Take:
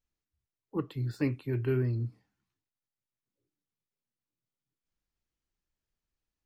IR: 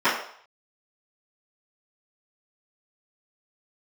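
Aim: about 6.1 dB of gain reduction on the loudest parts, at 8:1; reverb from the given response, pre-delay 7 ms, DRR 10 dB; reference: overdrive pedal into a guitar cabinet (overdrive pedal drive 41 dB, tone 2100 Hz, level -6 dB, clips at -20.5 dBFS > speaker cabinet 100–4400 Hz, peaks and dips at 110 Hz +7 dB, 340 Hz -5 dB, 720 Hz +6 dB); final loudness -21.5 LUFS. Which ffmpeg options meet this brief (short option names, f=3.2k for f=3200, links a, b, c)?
-filter_complex "[0:a]acompressor=threshold=-30dB:ratio=8,asplit=2[a][b];[1:a]atrim=start_sample=2205,adelay=7[c];[b][c]afir=irnorm=-1:irlink=0,volume=-29.5dB[d];[a][d]amix=inputs=2:normalize=0,asplit=2[e][f];[f]highpass=f=720:p=1,volume=41dB,asoftclip=type=tanh:threshold=-20.5dB[g];[e][g]amix=inputs=2:normalize=0,lowpass=f=2.1k:p=1,volume=-6dB,highpass=100,equalizer=f=110:t=q:w=4:g=7,equalizer=f=340:t=q:w=4:g=-5,equalizer=f=720:t=q:w=4:g=6,lowpass=f=4.4k:w=0.5412,lowpass=f=4.4k:w=1.3066,volume=7.5dB"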